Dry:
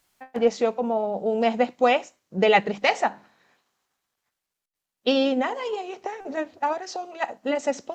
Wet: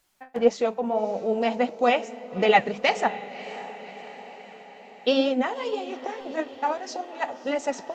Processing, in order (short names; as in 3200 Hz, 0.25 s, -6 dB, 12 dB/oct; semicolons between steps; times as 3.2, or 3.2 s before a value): flange 1.7 Hz, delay 1.4 ms, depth 6.8 ms, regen +55%; on a send: diffused feedback echo 0.585 s, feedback 60%, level -15 dB; on the sum: gain +3 dB